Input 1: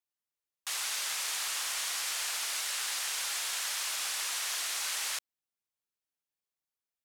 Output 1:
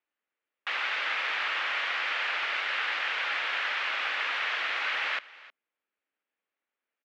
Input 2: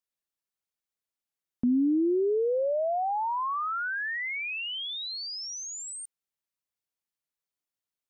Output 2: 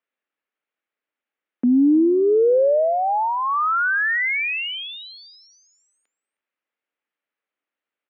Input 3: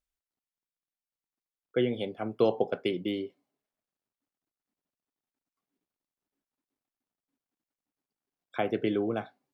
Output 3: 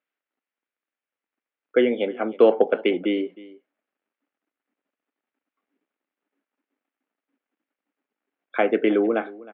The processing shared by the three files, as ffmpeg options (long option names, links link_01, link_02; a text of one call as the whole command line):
ffmpeg -i in.wav -af "acontrast=61,highpass=frequency=260:width=0.5412,highpass=frequency=260:width=1.3066,equalizer=frequency=370:width_type=q:width=4:gain=-4,equalizer=frequency=720:width_type=q:width=4:gain=-4,equalizer=frequency=1000:width_type=q:width=4:gain=-5,lowpass=frequency=2600:width=0.5412,lowpass=frequency=2600:width=1.3066,aecho=1:1:313:0.1,volume=5.5dB" out.wav